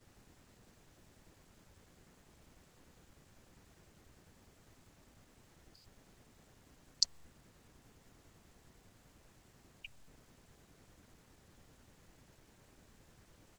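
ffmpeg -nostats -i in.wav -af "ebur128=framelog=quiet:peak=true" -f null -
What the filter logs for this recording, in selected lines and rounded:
Integrated loudness:
  I:         -37.7 LUFS
  Threshold: -59.7 LUFS
Loudness range:
  LRA:        20.8 LU
  Threshold: -68.8 LUFS
  LRA low:   -64.2 LUFS
  LRA high:  -43.5 LUFS
True peak:
  Peak:       -7.9 dBFS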